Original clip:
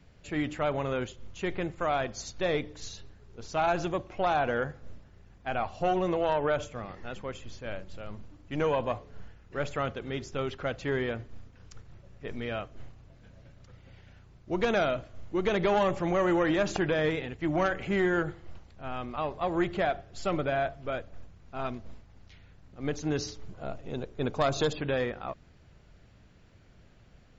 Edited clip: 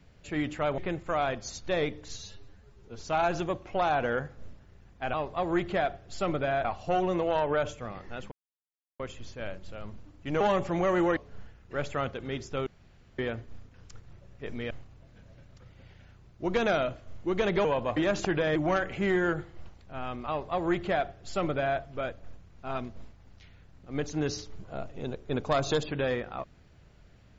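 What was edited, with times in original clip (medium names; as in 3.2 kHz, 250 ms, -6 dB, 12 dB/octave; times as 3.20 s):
0.78–1.50 s: delete
2.88–3.43 s: stretch 1.5×
7.25 s: insert silence 0.68 s
8.66–8.98 s: swap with 15.72–16.48 s
10.48–11.00 s: room tone
12.52–12.78 s: delete
17.07–17.45 s: delete
19.18–20.69 s: copy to 5.58 s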